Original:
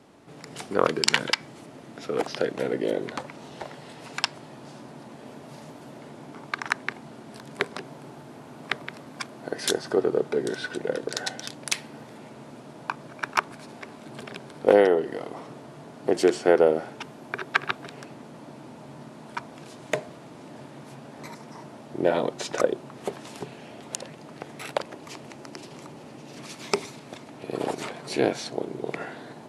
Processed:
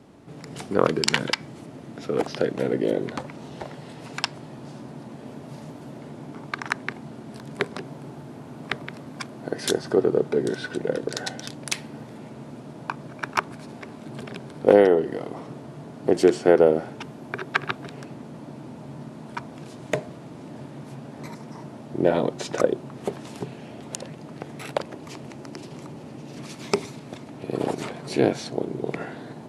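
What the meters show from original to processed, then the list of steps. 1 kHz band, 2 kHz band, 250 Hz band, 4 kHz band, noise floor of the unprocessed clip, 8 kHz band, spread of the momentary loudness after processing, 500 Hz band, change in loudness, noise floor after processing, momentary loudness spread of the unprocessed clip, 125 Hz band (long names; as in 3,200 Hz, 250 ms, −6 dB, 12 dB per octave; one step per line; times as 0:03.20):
0.0 dB, −0.5 dB, +4.5 dB, −1.0 dB, −46 dBFS, −1.0 dB, 19 LU, +2.5 dB, +2.0 dB, −42 dBFS, 21 LU, +7.0 dB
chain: low-shelf EQ 340 Hz +9.5 dB
level −1 dB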